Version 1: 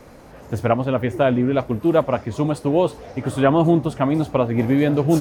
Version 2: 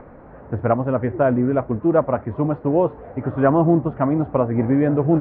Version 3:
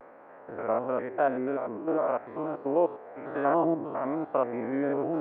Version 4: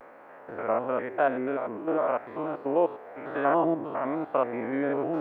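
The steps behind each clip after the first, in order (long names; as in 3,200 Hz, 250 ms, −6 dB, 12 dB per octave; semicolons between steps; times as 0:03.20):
upward compression, threshold −38 dBFS; low-pass filter 1,700 Hz 24 dB per octave
spectrum averaged block by block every 100 ms; high-pass filter 460 Hz 12 dB per octave; pitch vibrato 0.97 Hz 73 cents; level −2.5 dB
high-shelf EQ 2,100 Hz +11 dB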